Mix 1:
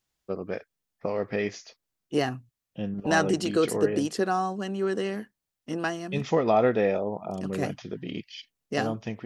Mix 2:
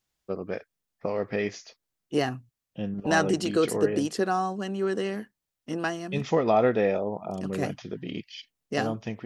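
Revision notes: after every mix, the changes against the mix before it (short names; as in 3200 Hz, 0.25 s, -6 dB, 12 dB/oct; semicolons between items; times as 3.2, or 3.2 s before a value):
none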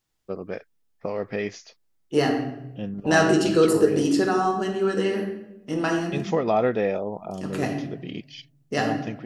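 reverb: on, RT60 0.90 s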